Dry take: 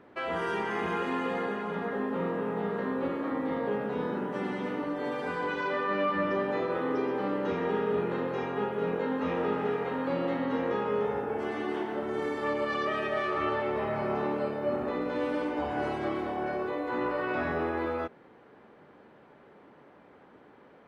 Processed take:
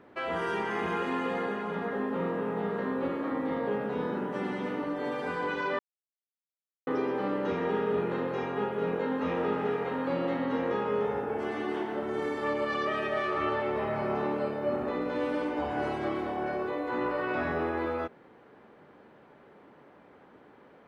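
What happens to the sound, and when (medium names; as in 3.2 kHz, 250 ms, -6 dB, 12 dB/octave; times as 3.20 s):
5.79–6.87 s: mute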